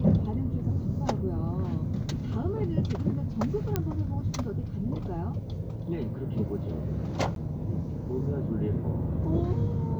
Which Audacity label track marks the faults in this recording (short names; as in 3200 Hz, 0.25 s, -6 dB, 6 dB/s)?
3.760000	3.760000	pop -13 dBFS
7.350000	7.360000	gap